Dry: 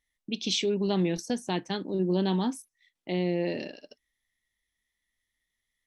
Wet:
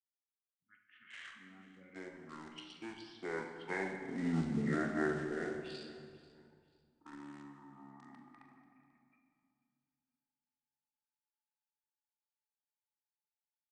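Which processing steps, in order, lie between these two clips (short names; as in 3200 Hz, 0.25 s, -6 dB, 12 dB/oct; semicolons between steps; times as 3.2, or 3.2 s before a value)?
opening faded in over 1.09 s; Doppler pass-by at 1.9, 25 m/s, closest 1.7 m; HPF 580 Hz 24 dB/oct; in parallel at -10.5 dB: companded quantiser 4-bit; on the sum: formant shift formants +2 st; doubler 18 ms -11.5 dB; feedback echo 0.209 s, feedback 28%, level -19 dB; on a send at -3.5 dB: reverb RT60 1.1 s, pre-delay 10 ms; on the sum: speed mistake 78 rpm record played at 33 rpm; gain +7 dB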